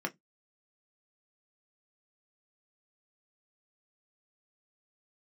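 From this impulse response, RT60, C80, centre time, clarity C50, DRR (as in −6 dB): 0.15 s, 39.0 dB, 10 ms, 26.5 dB, 3.0 dB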